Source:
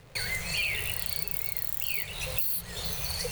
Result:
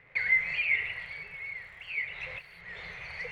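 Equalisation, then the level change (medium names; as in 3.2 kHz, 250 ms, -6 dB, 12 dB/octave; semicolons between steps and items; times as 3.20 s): resonant low-pass 2.1 kHz, resonance Q 7.9; bass shelf 210 Hz -8 dB; -7.5 dB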